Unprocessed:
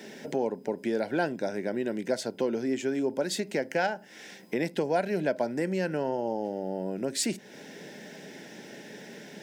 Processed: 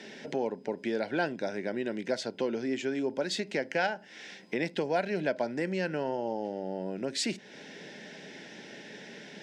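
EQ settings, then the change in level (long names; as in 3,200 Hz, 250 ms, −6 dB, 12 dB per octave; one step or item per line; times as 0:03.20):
low-pass filter 3,700 Hz 12 dB per octave
high-shelf EQ 2,500 Hz +11.5 dB
−3.0 dB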